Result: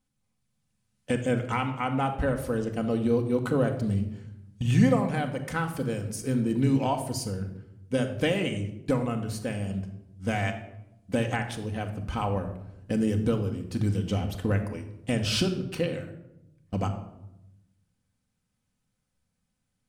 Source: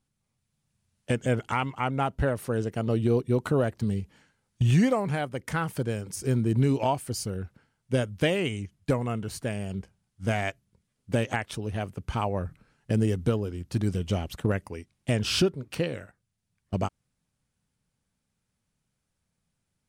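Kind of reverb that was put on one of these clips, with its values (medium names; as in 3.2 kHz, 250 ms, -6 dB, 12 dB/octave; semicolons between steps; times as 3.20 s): simulated room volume 2800 m³, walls furnished, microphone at 2 m; trim -2 dB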